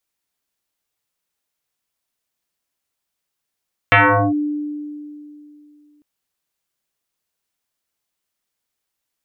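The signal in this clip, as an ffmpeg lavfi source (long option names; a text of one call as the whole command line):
ffmpeg -f lavfi -i "aevalsrc='0.447*pow(10,-3*t/2.78)*sin(2*PI*296*t+6.1*clip(1-t/0.41,0,1)*sin(2*PI*1.36*296*t))':duration=2.1:sample_rate=44100" out.wav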